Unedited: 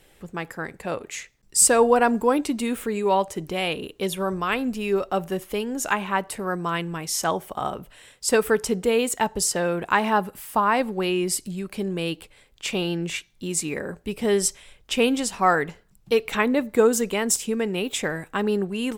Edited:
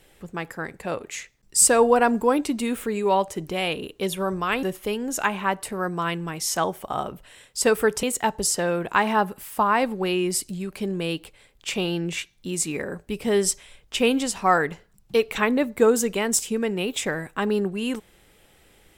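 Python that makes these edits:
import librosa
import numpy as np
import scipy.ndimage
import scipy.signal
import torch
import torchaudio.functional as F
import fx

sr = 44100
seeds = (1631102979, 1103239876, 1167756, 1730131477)

y = fx.edit(x, sr, fx.cut(start_s=4.63, length_s=0.67),
    fx.cut(start_s=8.7, length_s=0.3), tone=tone)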